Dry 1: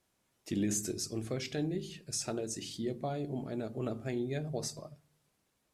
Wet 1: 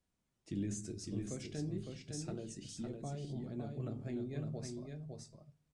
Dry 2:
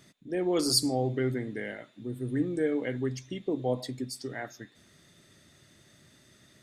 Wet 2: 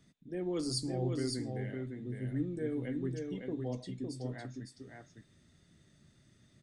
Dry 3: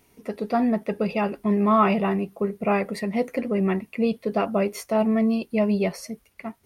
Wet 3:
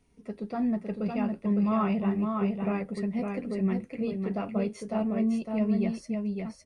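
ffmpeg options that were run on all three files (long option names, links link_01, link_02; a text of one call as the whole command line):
ffmpeg -i in.wav -filter_complex "[0:a]lowshelf=frequency=98:gain=7,aresample=22050,aresample=44100,flanger=delay=4.1:depth=7.3:regen=-63:speed=0.35:shape=sinusoidal,acrossover=split=290[link_01][link_02];[link_01]acontrast=75[link_03];[link_03][link_02]amix=inputs=2:normalize=0,aecho=1:1:558:0.596,volume=-7.5dB" out.wav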